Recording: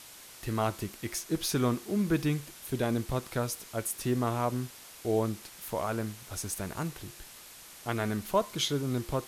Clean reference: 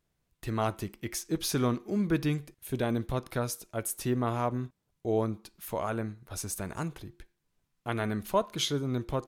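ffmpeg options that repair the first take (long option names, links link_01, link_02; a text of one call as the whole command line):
ffmpeg -i in.wav -af "afwtdn=0.004" out.wav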